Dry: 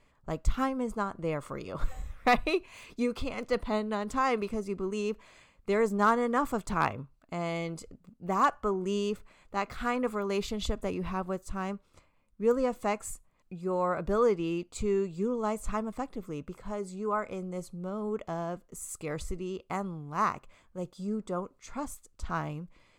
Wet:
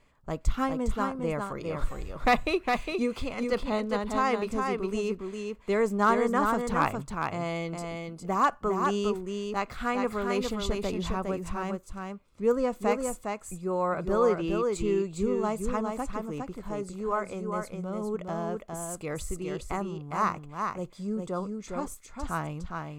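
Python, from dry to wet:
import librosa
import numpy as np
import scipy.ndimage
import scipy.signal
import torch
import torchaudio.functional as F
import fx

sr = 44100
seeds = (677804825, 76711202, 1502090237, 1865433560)

y = x + 10.0 ** (-4.5 / 20.0) * np.pad(x, (int(408 * sr / 1000.0), 0))[:len(x)]
y = y * 10.0 ** (1.0 / 20.0)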